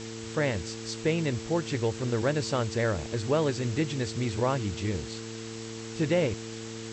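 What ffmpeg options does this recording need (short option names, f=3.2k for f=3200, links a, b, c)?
-af "bandreject=f=112.5:t=h:w=4,bandreject=f=225:t=h:w=4,bandreject=f=337.5:t=h:w=4,bandreject=f=450:t=h:w=4,afftdn=nr=30:nf=-39"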